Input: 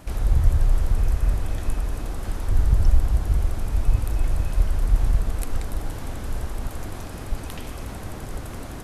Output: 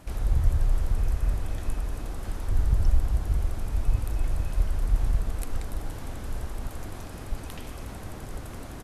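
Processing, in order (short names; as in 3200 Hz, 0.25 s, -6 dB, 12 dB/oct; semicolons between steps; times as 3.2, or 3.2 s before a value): downsampling 32000 Hz; gain -4.5 dB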